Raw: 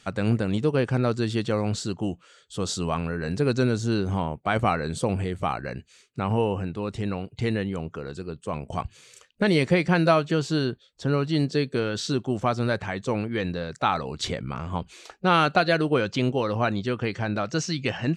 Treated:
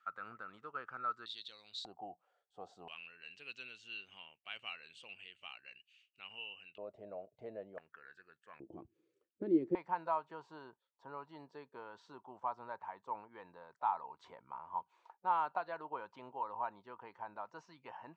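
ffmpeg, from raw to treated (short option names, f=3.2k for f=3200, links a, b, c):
-af "asetnsamples=n=441:p=0,asendcmd='1.26 bandpass f 3800;1.85 bandpass f 750;2.88 bandpass f 2800;6.78 bandpass f 620;7.78 bandpass f 1700;8.6 bandpass f 330;9.75 bandpass f 940',bandpass=f=1.3k:t=q:w=12:csg=0"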